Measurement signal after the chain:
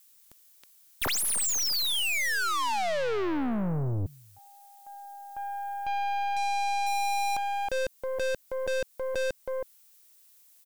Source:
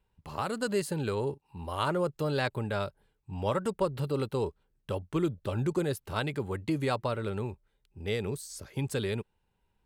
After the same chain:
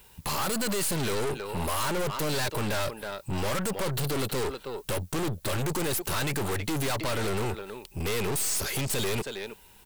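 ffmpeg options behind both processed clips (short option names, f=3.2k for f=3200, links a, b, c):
-filter_complex "[0:a]lowshelf=f=190:g=-6.5,asplit=2[a][b];[b]acompressor=threshold=-41dB:ratio=6,volume=-0.5dB[c];[a][c]amix=inputs=2:normalize=0,asplit=2[d][e];[e]adelay=320,highpass=300,lowpass=3.4k,asoftclip=type=hard:threshold=-23dB,volume=-18dB[f];[d][f]amix=inputs=2:normalize=0,crystalizer=i=4:c=0,aeval=exprs='0.631*sin(PI/2*5.01*val(0)/0.631)':c=same,aeval=exprs='(tanh(20*val(0)+0.5)-tanh(0.5))/20':c=same,volume=-2dB"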